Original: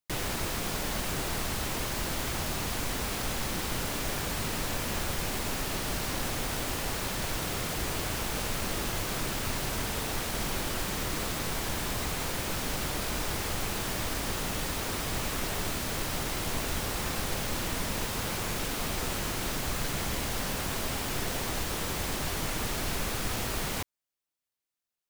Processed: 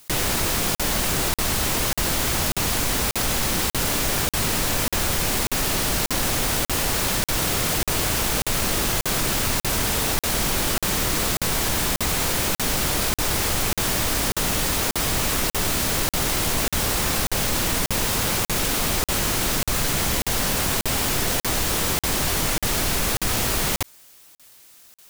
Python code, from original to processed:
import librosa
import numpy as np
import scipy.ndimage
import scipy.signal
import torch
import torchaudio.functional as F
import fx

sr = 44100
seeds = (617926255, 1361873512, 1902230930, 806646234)

y = fx.high_shelf(x, sr, hz=4300.0, db=5.0)
y = fx.buffer_crackle(y, sr, first_s=0.75, period_s=0.59, block=2048, kind='zero')
y = fx.env_flatten(y, sr, amount_pct=50)
y = y * 10.0 ** (6.5 / 20.0)